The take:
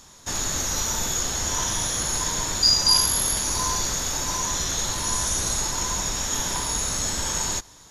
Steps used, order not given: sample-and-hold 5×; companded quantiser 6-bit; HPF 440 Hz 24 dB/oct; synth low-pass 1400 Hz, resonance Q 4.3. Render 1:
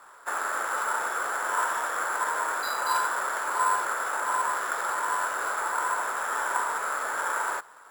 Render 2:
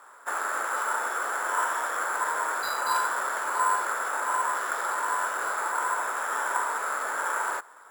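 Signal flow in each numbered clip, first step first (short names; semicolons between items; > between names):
synth low-pass > companded quantiser > HPF > sample-and-hold; HPF > companded quantiser > synth low-pass > sample-and-hold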